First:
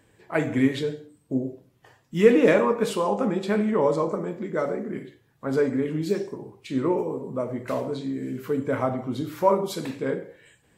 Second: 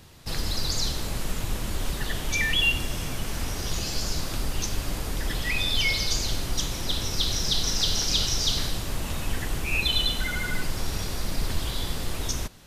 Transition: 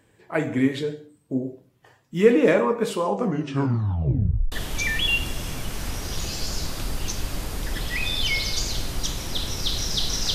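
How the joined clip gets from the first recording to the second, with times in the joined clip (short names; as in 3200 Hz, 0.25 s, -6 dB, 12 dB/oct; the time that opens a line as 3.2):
first
3.13 tape stop 1.39 s
4.52 switch to second from 2.06 s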